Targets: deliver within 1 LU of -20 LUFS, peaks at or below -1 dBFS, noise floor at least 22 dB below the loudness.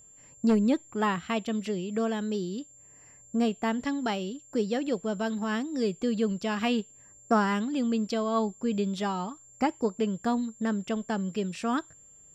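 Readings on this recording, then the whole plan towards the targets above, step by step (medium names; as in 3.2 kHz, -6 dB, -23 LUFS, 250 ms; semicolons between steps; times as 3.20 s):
steady tone 7.3 kHz; tone level -52 dBFS; loudness -29.5 LUFS; peak level -13.0 dBFS; loudness target -20.0 LUFS
-> band-stop 7.3 kHz, Q 30; trim +9.5 dB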